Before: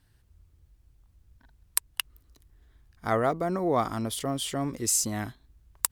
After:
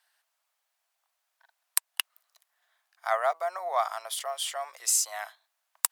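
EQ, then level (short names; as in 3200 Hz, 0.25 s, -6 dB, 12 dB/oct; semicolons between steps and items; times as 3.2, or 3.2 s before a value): elliptic high-pass 660 Hz, stop band 60 dB; +1.5 dB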